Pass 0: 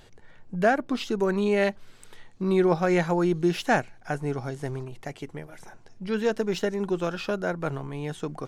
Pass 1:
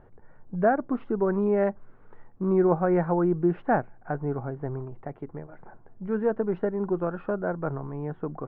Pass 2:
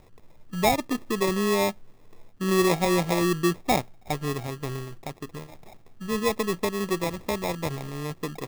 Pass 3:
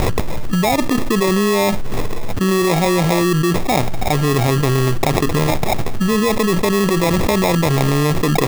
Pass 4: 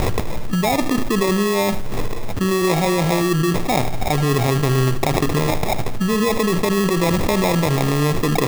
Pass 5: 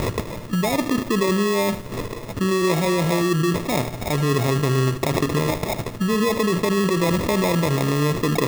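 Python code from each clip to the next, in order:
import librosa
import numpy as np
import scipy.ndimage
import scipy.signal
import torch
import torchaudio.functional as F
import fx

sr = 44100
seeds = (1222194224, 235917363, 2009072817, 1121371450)

y1 = scipy.signal.sosfilt(scipy.signal.butter(4, 1400.0, 'lowpass', fs=sr, output='sos'), x)
y2 = fx.sample_hold(y1, sr, seeds[0], rate_hz=1500.0, jitter_pct=0)
y3 = fx.env_flatten(y2, sr, amount_pct=100)
y3 = F.gain(torch.from_numpy(y3), 2.5).numpy()
y4 = fx.echo_feedback(y3, sr, ms=76, feedback_pct=50, wet_db=-13.0)
y4 = F.gain(torch.from_numpy(y4), -2.5).numpy()
y5 = fx.notch_comb(y4, sr, f0_hz=770.0)
y5 = F.gain(torch.from_numpy(y5), -1.5).numpy()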